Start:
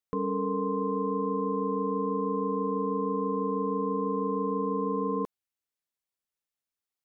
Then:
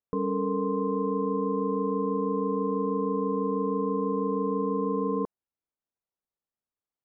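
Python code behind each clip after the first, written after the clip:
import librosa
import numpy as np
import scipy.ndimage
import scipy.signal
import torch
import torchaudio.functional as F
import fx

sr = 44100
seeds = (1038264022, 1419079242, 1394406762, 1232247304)

y = scipy.signal.sosfilt(scipy.signal.butter(2, 1100.0, 'lowpass', fs=sr, output='sos'), x)
y = F.gain(torch.from_numpy(y), 2.0).numpy()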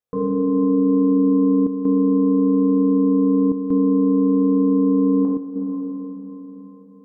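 y = fx.echo_diffused(x, sr, ms=508, feedback_pct=54, wet_db=-13)
y = fx.rev_fdn(y, sr, rt60_s=2.4, lf_ratio=1.55, hf_ratio=0.5, size_ms=12.0, drr_db=-5.0)
y = fx.chopper(y, sr, hz=0.54, depth_pct=60, duty_pct=90)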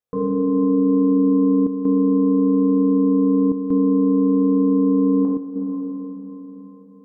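y = x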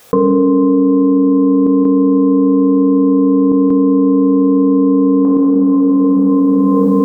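y = fx.low_shelf(x, sr, hz=190.0, db=-8.0)
y = fx.env_flatten(y, sr, amount_pct=100)
y = F.gain(torch.from_numpy(y), 7.5).numpy()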